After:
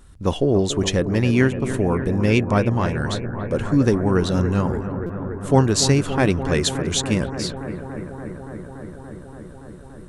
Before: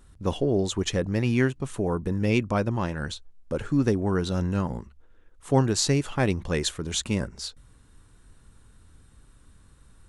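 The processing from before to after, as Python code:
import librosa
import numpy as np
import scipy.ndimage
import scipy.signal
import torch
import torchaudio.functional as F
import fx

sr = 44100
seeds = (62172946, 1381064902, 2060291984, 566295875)

p1 = x + fx.echo_bbd(x, sr, ms=286, stages=4096, feedback_pct=84, wet_db=-11.0, dry=0)
p2 = fx.buffer_glitch(p1, sr, at_s=(5.06,), block=256, repeats=5)
y = F.gain(torch.from_numpy(p2), 5.5).numpy()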